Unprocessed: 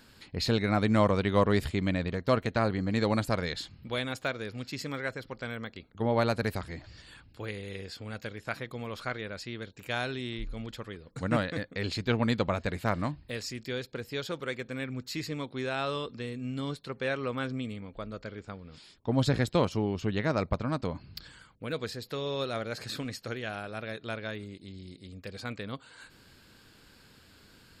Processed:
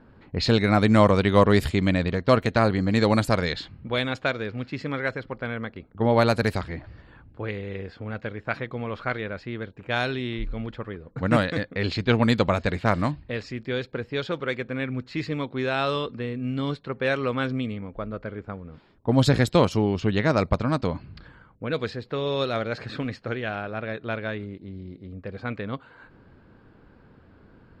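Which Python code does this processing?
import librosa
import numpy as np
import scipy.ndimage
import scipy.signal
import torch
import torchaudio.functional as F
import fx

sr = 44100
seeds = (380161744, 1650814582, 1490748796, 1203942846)

y = fx.env_lowpass(x, sr, base_hz=950.0, full_db=-24.0)
y = y * librosa.db_to_amplitude(7.0)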